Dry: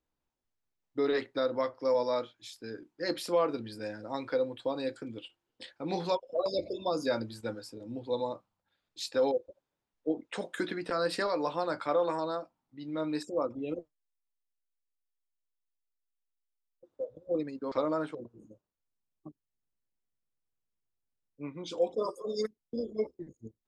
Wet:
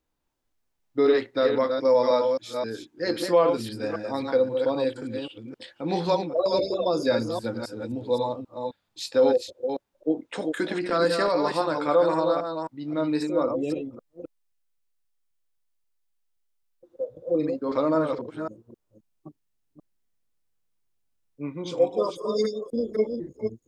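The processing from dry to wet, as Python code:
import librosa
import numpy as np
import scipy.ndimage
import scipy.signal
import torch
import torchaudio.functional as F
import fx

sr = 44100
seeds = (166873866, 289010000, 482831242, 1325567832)

y = fx.reverse_delay(x, sr, ms=264, wet_db=-5.0)
y = fx.hpss(y, sr, part='harmonic', gain_db=5)
y = y * 10.0 ** (3.0 / 20.0)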